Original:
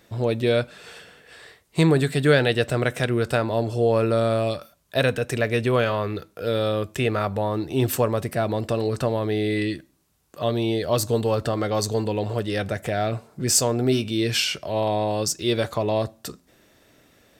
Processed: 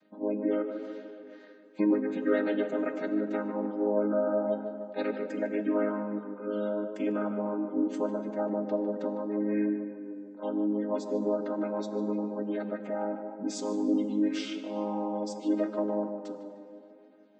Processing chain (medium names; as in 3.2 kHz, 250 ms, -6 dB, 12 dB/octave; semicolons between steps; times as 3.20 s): vocoder on a held chord major triad, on G#3; spectral gate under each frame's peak -30 dB strong; tape echo 151 ms, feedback 75%, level -8 dB, low-pass 1.7 kHz; plate-style reverb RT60 1.7 s, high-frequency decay 0.8×, DRR 10 dB; trim -7 dB